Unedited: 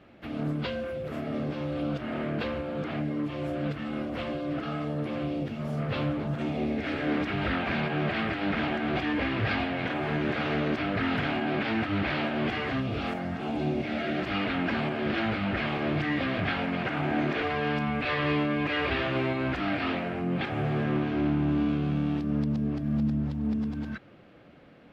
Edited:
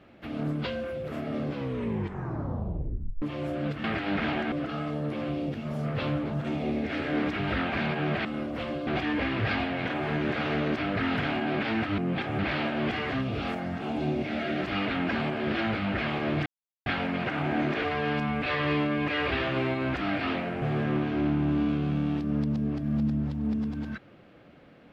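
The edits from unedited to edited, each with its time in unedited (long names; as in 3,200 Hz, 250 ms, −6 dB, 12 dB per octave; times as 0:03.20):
0:01.48: tape stop 1.74 s
0:03.84–0:04.46: swap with 0:08.19–0:08.87
0:16.05–0:16.45: silence
0:20.21–0:20.62: move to 0:11.98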